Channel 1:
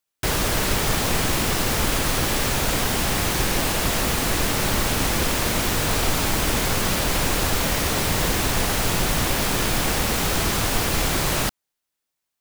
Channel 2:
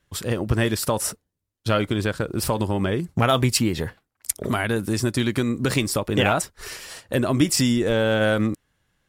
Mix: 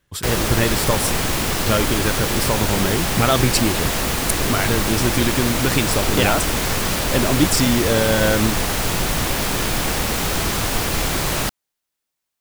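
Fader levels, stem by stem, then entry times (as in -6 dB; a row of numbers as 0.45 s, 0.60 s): +1.0 dB, +1.5 dB; 0.00 s, 0.00 s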